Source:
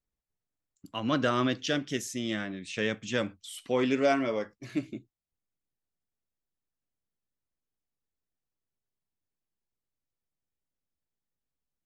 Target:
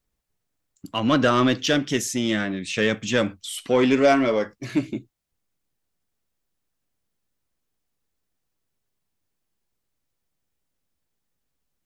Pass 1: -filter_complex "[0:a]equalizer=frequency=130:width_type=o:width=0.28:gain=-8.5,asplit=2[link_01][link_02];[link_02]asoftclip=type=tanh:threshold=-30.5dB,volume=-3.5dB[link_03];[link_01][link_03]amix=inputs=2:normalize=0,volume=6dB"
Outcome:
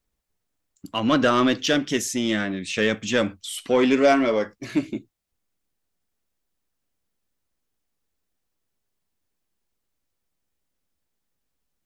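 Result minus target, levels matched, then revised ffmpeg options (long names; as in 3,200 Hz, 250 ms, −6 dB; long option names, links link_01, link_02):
125 Hz band −4.0 dB
-filter_complex "[0:a]asplit=2[link_01][link_02];[link_02]asoftclip=type=tanh:threshold=-30.5dB,volume=-3.5dB[link_03];[link_01][link_03]amix=inputs=2:normalize=0,volume=6dB"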